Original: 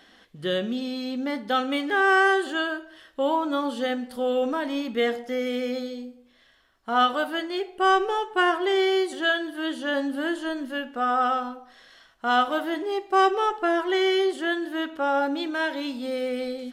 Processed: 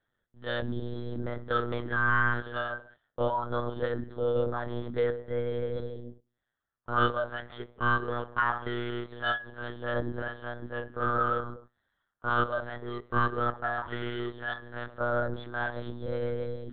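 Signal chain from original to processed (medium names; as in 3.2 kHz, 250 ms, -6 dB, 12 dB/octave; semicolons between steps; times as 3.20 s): de-hum 60.53 Hz, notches 6; gate -45 dBFS, range -19 dB; static phaser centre 520 Hz, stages 8; monotone LPC vocoder at 8 kHz 120 Hz; trim -2.5 dB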